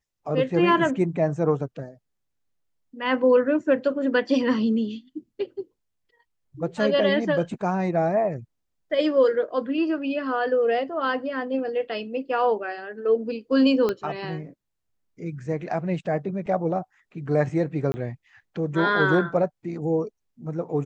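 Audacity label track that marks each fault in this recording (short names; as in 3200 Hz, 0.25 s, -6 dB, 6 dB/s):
13.890000	13.890000	pop -13 dBFS
17.920000	17.940000	gap 20 ms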